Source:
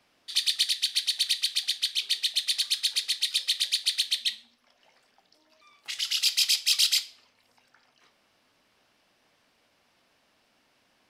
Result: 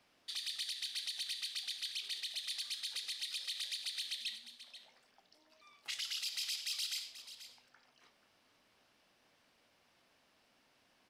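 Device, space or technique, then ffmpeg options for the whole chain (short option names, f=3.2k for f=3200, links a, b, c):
stacked limiters: -af "alimiter=limit=-18.5dB:level=0:latency=1:release=61,alimiter=level_in=1.5dB:limit=-24dB:level=0:latency=1:release=81,volume=-1.5dB,aecho=1:1:485:0.224,volume=-4.5dB"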